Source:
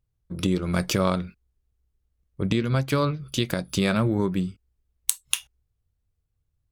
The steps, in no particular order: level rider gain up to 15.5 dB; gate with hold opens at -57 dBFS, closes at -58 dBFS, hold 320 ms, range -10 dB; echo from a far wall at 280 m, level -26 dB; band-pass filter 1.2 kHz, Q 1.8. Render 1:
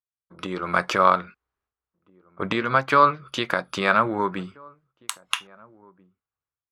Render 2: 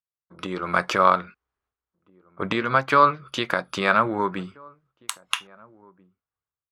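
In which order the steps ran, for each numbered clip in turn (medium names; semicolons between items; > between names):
band-pass filter > gate with hold > level rider > echo from a far wall; band-pass filter > level rider > gate with hold > echo from a far wall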